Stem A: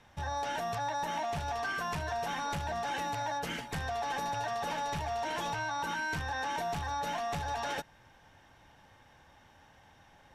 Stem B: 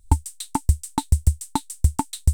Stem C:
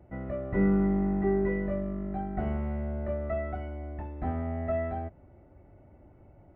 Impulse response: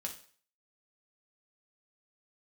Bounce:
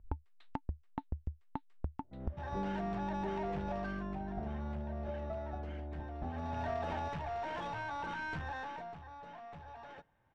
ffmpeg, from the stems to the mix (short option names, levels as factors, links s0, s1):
-filter_complex "[0:a]aeval=exprs='clip(val(0),-1,0.0211)':c=same,adelay=2200,volume=1.78,afade=t=out:st=3.74:d=0.36:silence=0.354813,afade=t=in:st=6.32:d=0.28:silence=0.298538,afade=t=out:st=8.48:d=0.49:silence=0.316228,asplit=2[s0][s1];[s1]volume=0.158[s2];[1:a]lowpass=2000,volume=0.631[s3];[2:a]lowpass=1100,adelay=2000,volume=0.631[s4];[s3][s4]amix=inputs=2:normalize=0,acompressor=threshold=0.0141:ratio=5,volume=1[s5];[3:a]atrim=start_sample=2205[s6];[s2][s6]afir=irnorm=-1:irlink=0[s7];[s0][s5][s7]amix=inputs=3:normalize=0,highshelf=f=5800:g=-7,adynamicsmooth=sensitivity=5:basefreq=2600"